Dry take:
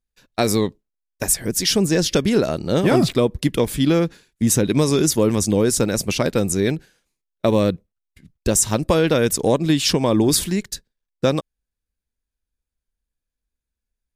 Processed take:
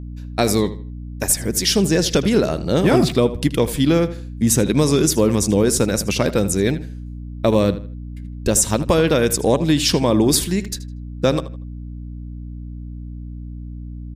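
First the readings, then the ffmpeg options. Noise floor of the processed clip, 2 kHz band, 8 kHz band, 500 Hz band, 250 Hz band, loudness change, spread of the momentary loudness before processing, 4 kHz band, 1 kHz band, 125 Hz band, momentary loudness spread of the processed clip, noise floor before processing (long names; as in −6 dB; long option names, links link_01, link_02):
−32 dBFS, +1.0 dB, +1.0 dB, +1.0 dB, +1.5 dB, +1.0 dB, 8 LU, +1.0 dB, +1.0 dB, +2.0 dB, 18 LU, −85 dBFS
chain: -filter_complex "[0:a]asplit=2[link_01][link_02];[link_02]adelay=79,lowpass=frequency=4400:poles=1,volume=-14dB,asplit=2[link_03][link_04];[link_04]adelay=79,lowpass=frequency=4400:poles=1,volume=0.3,asplit=2[link_05][link_06];[link_06]adelay=79,lowpass=frequency=4400:poles=1,volume=0.3[link_07];[link_01][link_03][link_05][link_07]amix=inputs=4:normalize=0,aeval=exprs='val(0)+0.0282*(sin(2*PI*60*n/s)+sin(2*PI*2*60*n/s)/2+sin(2*PI*3*60*n/s)/3+sin(2*PI*4*60*n/s)/4+sin(2*PI*5*60*n/s)/5)':channel_layout=same,volume=1dB"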